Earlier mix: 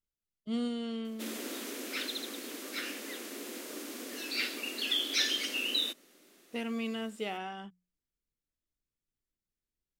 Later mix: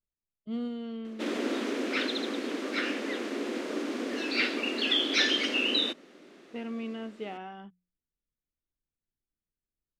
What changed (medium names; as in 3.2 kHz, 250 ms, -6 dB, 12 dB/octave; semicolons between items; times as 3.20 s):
background +12.0 dB; master: add tape spacing loss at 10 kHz 24 dB